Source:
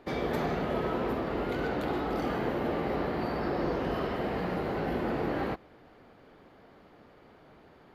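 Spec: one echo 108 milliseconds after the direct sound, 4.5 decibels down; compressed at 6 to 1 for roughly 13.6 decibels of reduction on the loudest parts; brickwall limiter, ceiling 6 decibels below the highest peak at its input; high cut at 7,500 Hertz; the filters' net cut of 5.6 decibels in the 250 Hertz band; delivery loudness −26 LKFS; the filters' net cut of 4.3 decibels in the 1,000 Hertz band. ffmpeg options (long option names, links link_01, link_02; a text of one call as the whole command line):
ffmpeg -i in.wav -af "lowpass=7500,equalizer=frequency=250:width_type=o:gain=-7.5,equalizer=frequency=1000:width_type=o:gain=-5.5,acompressor=threshold=-46dB:ratio=6,alimiter=level_in=16.5dB:limit=-24dB:level=0:latency=1,volume=-16.5dB,aecho=1:1:108:0.596,volume=24dB" out.wav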